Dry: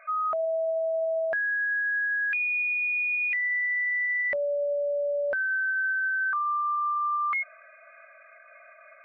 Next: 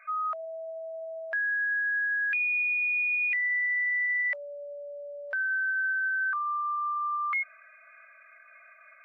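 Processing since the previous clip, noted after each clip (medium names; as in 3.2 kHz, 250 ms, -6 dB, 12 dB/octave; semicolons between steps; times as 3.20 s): high-pass 1.2 kHz 12 dB/octave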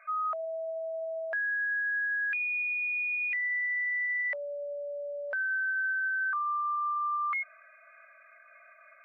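tilt shelf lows +6 dB, about 1.1 kHz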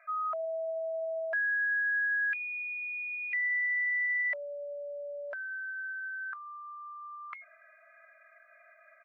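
comb 3 ms, depth 88%; trim -4.5 dB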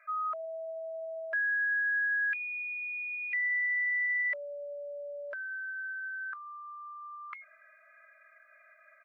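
Butterworth band-stop 780 Hz, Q 2.3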